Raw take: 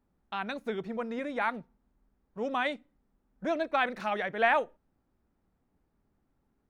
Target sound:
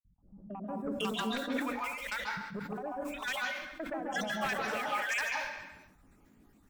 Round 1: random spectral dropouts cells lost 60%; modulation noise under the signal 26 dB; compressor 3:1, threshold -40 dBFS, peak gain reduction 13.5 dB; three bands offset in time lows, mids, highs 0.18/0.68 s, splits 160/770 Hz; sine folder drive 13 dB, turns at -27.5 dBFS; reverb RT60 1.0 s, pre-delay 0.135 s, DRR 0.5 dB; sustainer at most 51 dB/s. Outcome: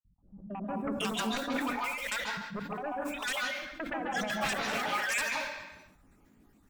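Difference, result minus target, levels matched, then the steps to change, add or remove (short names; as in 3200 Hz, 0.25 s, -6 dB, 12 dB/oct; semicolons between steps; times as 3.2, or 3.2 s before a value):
compressor: peak gain reduction -4.5 dB
change: compressor 3:1, threshold -47 dBFS, peak gain reduction 18 dB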